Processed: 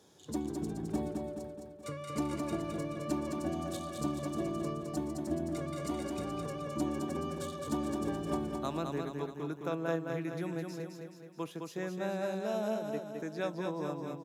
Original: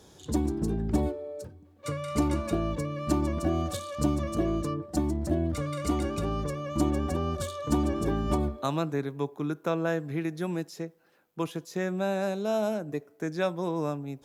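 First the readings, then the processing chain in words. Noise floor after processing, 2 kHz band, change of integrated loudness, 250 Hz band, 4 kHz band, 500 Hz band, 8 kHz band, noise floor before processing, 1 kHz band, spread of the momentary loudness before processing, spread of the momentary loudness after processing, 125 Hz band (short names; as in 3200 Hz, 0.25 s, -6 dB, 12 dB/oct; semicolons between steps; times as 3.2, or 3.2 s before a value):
-51 dBFS, -6.0 dB, -6.5 dB, -6.0 dB, -6.0 dB, -5.5 dB, -6.0 dB, -58 dBFS, -6.0 dB, 7 LU, 6 LU, -9.5 dB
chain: HPF 130 Hz 12 dB/oct; on a send: feedback echo 0.213 s, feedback 52%, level -4.5 dB; on the sum: gain -7.5 dB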